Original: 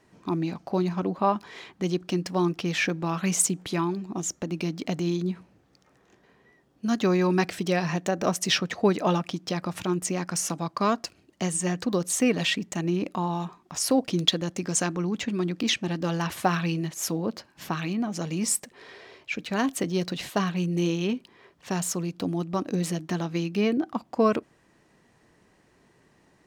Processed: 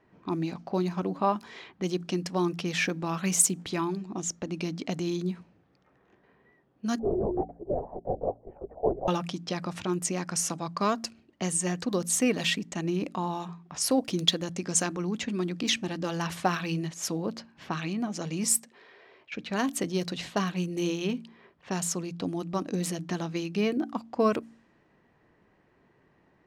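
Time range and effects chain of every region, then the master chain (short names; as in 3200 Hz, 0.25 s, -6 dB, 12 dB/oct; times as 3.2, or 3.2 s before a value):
6.99–9.08 elliptic band-pass 360–810 Hz, stop band 70 dB + LPC vocoder at 8 kHz whisper
18.58–19.32 low shelf 180 Hz -10.5 dB + compressor 2.5:1, threshold -49 dBFS
whole clip: low-pass opened by the level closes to 2300 Hz, open at -22.5 dBFS; high shelf 7800 Hz +7 dB; de-hum 57.01 Hz, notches 5; gain -2.5 dB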